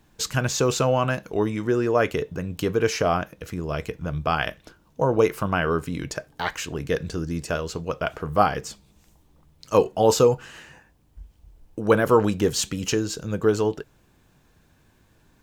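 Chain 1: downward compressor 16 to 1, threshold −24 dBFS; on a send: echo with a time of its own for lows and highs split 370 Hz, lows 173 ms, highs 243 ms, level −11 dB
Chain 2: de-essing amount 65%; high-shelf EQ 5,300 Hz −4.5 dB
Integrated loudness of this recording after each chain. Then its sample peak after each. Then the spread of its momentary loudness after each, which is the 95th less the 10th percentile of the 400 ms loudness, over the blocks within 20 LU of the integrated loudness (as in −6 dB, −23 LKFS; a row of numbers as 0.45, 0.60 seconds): −30.5, −24.5 LKFS; −11.5, −4.5 dBFS; 14, 12 LU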